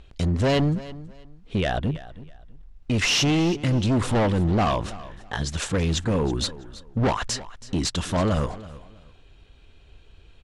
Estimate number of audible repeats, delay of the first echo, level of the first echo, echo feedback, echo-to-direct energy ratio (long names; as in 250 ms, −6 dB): 2, 326 ms, −17.5 dB, 25%, −17.5 dB